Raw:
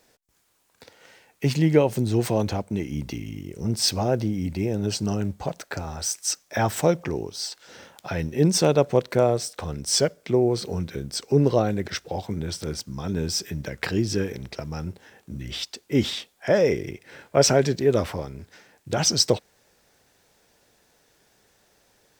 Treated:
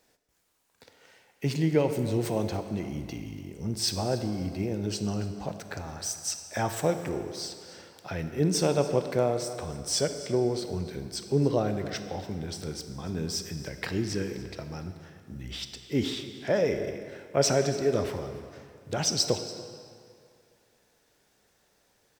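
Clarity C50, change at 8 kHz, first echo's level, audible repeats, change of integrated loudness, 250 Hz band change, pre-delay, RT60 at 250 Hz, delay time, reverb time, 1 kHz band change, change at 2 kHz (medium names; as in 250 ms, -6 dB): 8.5 dB, -5.5 dB, -18.0 dB, 1, -5.5 dB, -5.0 dB, 22 ms, 2.1 s, 286 ms, 2.3 s, -5.0 dB, -5.5 dB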